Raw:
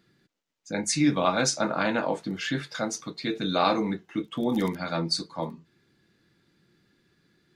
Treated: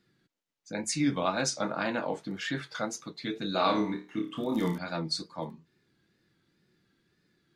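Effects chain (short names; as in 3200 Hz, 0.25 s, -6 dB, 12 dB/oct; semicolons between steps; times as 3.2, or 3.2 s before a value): 2.16–2.86 dynamic EQ 1200 Hz, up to +4 dB, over -45 dBFS, Q 0.89; 3.52–4.78 flutter echo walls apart 4.7 m, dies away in 0.35 s; wow and flutter 73 cents; gain -5 dB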